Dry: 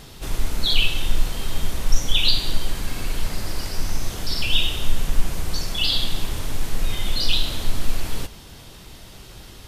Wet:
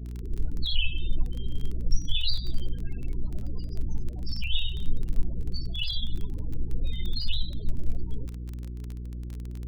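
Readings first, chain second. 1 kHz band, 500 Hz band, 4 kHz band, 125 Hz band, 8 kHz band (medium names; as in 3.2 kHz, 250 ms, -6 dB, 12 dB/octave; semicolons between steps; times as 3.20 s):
-24.0 dB, -11.0 dB, -10.0 dB, -2.5 dB, -19.0 dB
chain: mains buzz 60 Hz, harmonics 34, -29 dBFS -8 dB/octave; loudest bins only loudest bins 16; crackle 18 per s -25 dBFS; trim -6.5 dB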